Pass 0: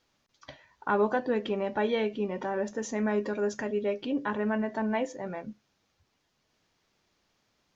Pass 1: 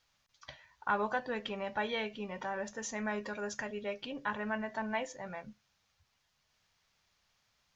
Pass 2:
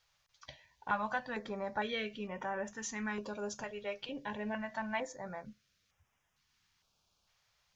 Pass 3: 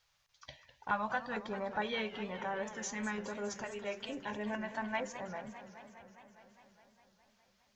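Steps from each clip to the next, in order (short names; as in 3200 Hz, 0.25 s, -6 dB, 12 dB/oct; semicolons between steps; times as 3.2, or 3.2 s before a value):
bell 320 Hz -15 dB 1.6 oct
stepped notch 2.2 Hz 260–4300 Hz
warbling echo 0.205 s, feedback 75%, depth 192 cents, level -13 dB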